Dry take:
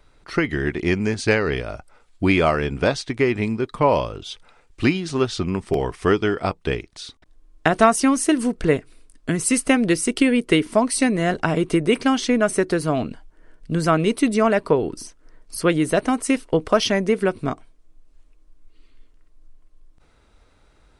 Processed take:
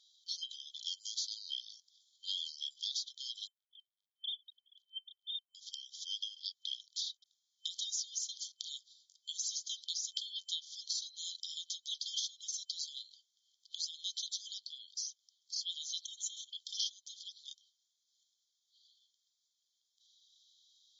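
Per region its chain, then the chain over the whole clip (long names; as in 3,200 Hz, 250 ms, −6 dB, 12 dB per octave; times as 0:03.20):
0:03.47–0:05.55: three sine waves on the formant tracks + upward compression, threshold −34 dBFS
0:16.04–0:16.50: phaser with its sweep stopped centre 2,100 Hz, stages 4 + envelope flattener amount 50%
whole clip: brick-wall band-pass 3,100–7,300 Hz; downward compressor 6 to 1, threshold −39 dBFS; level +3.5 dB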